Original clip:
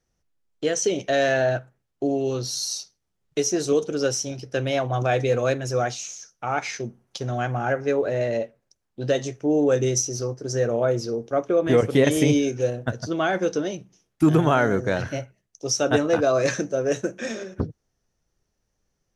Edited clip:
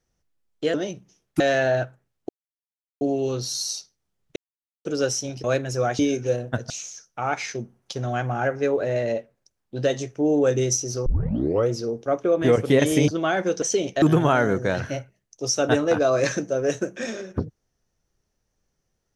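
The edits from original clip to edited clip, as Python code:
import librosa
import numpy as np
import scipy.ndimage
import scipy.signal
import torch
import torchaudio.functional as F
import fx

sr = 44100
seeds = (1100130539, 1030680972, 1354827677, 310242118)

y = fx.edit(x, sr, fx.swap(start_s=0.74, length_s=0.4, other_s=13.58, other_length_s=0.66),
    fx.insert_silence(at_s=2.03, length_s=0.72),
    fx.silence(start_s=3.38, length_s=0.49),
    fx.cut(start_s=4.46, length_s=0.94),
    fx.tape_start(start_s=10.31, length_s=0.63),
    fx.move(start_s=12.33, length_s=0.71, to_s=5.95), tone=tone)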